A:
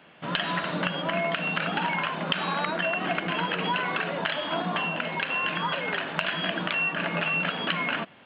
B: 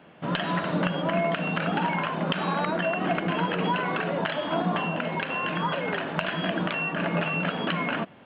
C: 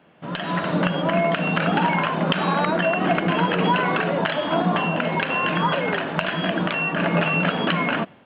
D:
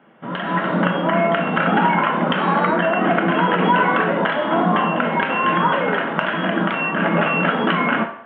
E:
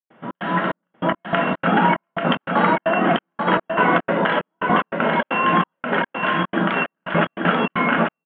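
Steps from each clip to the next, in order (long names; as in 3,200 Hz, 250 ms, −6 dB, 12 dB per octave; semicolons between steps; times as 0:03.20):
tilt shelving filter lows +5.5 dB, about 1,200 Hz
automatic gain control gain up to 11.5 dB; level −3.5 dB
convolution reverb RT60 0.60 s, pre-delay 3 ms, DRR 3.5 dB; level −7 dB
gate pattern ".xx.xxx...x." 147 BPM −60 dB; on a send: single-tap delay 838 ms −5 dB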